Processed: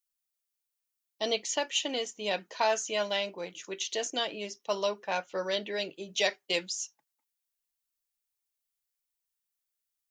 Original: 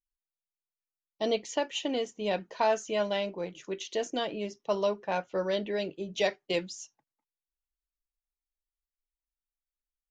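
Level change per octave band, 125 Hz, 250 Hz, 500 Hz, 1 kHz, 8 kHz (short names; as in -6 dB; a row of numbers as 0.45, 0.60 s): -7.0, -6.0, -2.5, -0.5, +8.0 dB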